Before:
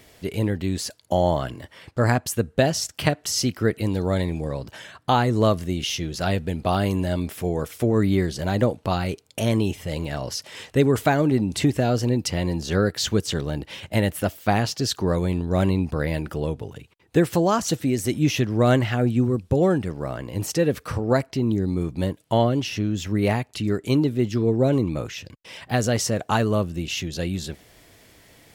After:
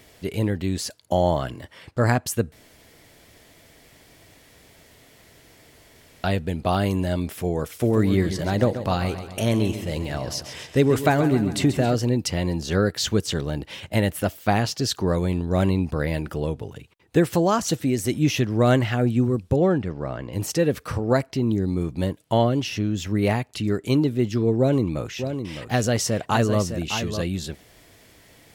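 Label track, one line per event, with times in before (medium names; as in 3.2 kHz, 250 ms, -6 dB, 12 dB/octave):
2.520000	6.240000	room tone
7.660000	11.950000	feedback delay 135 ms, feedback 53%, level -11 dB
19.560000	20.330000	distance through air 110 m
24.580000	27.220000	delay 609 ms -8.5 dB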